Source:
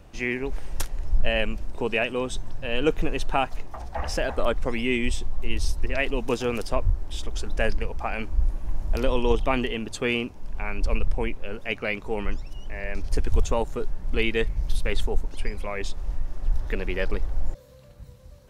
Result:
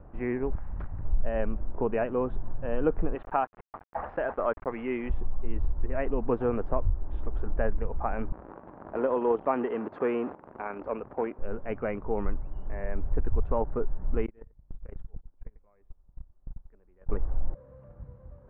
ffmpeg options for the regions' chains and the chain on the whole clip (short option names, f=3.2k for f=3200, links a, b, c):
-filter_complex "[0:a]asettb=1/sr,asplit=3[a][b][c];[a]atrim=end=0.554[d];[b]atrim=start=0.55:end=1.05,asetpts=PTS-STARTPTS,afade=t=in:d=0.004:c=qsin,afade=t=out:st=0.496:d=0.004:c=qsin,equalizer=f=400:t=o:w=1:g=-15,aeval=exprs='0.0447*(abs(mod(val(0)/0.0447+3,4)-2)-1)':c=same[e];[c]atrim=start=1.046[f];[d][e]acrossfade=d=0.004:c1=hsin:c2=qsin[g];[g][f]acrossfade=d=0.004:c1=qsin:c2=hsin,asettb=1/sr,asplit=3[h][i][j];[h]atrim=end=3.154[k];[i]atrim=start=3.15:end=5.1,asetpts=PTS-STARTPTS,afade=t=in:d=0.004:c=qsin,afade=t=out:st=1.946:d=0.004:c=qsin,lowpass=f=3.4k:w=0.5412,lowpass=f=3.4k:w=1.3066,aemphasis=mode=production:type=riaa,aeval=exprs='val(0)*gte(abs(val(0)),0.015)':c=same[l];[j]atrim=start=5.096[m];[k][l]acrossfade=d=0.004:c1=hsin:c2=qsin[n];[n][m]acrossfade=d=0.004:c1=qsin:c2=hsin,asettb=1/sr,asplit=3[o][p][q];[o]atrim=end=8.324[r];[p]atrim=start=8.32:end=11.39,asetpts=PTS-STARTPTS,afade=t=in:d=0.004:c=qsin,afade=t=out:st=3.066:d=0.004:c=qsin,aeval=exprs='val(0)+0.5*0.0316*sgn(val(0))':c=same,highpass=300[s];[q]atrim=start=11.386[t];[r][s]acrossfade=d=0.004:c1=hsin:c2=qsin[u];[u][t]acrossfade=d=0.004:c1=qsin:c2=hsin,asettb=1/sr,asplit=3[v][w][x];[v]atrim=end=14.264[y];[w]atrim=start=14.26:end=17.09,asetpts=PTS-STARTPTS,afade=t=in:d=0.004:c=qsin,afade=t=out:st=2.826:d=0.004:c=qsin,agate=range=-34dB:threshold=-18dB:ratio=16:release=100:detection=peak,aecho=1:1:91:0.0794,atrim=end_sample=124803,acompressor=threshold=-32dB:ratio=16:attack=3.2:release=140:knee=1:detection=peak[z];[x]atrim=start=17.086[aa];[y][z]acrossfade=d=0.004:c1=hsin:c2=qsin[ab];[ab][aa]acrossfade=d=0.004:c1=qsin:c2=hsin,lowpass=f=1.4k:w=0.5412,lowpass=f=1.4k:w=1.3066,acompressor=threshold=-21dB:ratio=2.5"